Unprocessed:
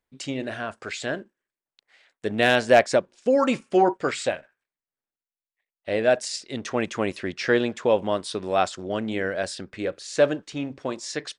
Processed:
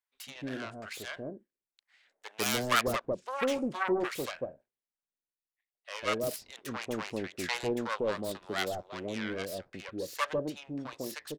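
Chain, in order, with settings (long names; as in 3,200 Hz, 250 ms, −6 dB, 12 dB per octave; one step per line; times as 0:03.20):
phase distortion by the signal itself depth 0.53 ms
multiband delay without the direct sound highs, lows 150 ms, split 740 Hz
level −7.5 dB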